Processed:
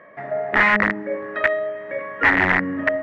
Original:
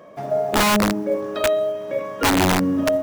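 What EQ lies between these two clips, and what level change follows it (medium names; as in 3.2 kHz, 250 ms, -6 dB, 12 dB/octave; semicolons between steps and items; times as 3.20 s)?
resonant low-pass 1.9 kHz, resonance Q 9.2; bass shelf 410 Hz -3.5 dB; -3.5 dB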